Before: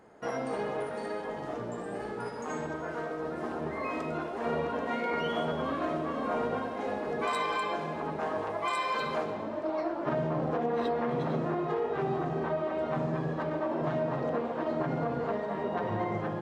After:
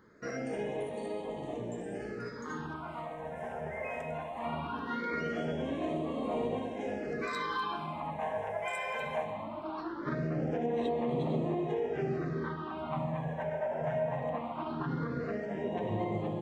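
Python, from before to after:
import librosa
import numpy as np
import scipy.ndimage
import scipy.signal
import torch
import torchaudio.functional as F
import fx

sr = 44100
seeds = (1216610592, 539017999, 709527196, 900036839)

y = fx.phaser_stages(x, sr, stages=6, low_hz=310.0, high_hz=1500.0, hz=0.2, feedback_pct=5)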